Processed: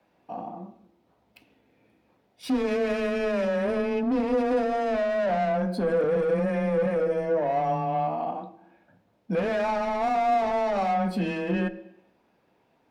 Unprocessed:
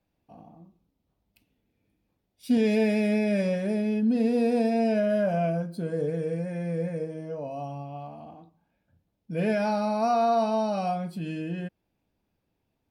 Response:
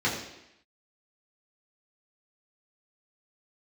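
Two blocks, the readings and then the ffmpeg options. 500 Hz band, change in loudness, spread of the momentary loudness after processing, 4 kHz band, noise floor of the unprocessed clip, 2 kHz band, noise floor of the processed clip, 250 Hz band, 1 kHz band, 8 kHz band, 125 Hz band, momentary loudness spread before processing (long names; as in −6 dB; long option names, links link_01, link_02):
+2.5 dB, +0.5 dB, 11 LU, +1.0 dB, −78 dBFS, +4.0 dB, −68 dBFS, −2.5 dB, +4.0 dB, can't be measured, −2.0 dB, 12 LU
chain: -filter_complex "[0:a]asplit=2[link_01][link_02];[link_02]highpass=frequency=720:poles=1,volume=25dB,asoftclip=type=tanh:threshold=-14dB[link_03];[link_01][link_03]amix=inputs=2:normalize=0,lowpass=frequency=1400:poles=1,volume=-6dB,afreqshift=14,alimiter=limit=-19.5dB:level=0:latency=1:release=92,asplit=2[link_04][link_05];[1:a]atrim=start_sample=2205[link_06];[link_05][link_06]afir=irnorm=-1:irlink=0,volume=-22.5dB[link_07];[link_04][link_07]amix=inputs=2:normalize=0"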